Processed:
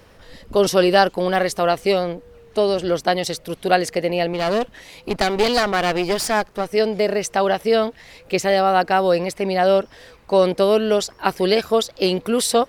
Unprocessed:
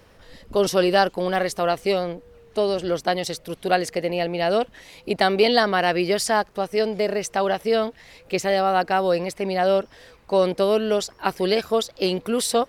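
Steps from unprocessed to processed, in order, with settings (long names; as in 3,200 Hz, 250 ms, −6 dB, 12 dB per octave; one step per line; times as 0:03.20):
0:04.33–0:06.74: asymmetric clip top −29.5 dBFS
level +3.5 dB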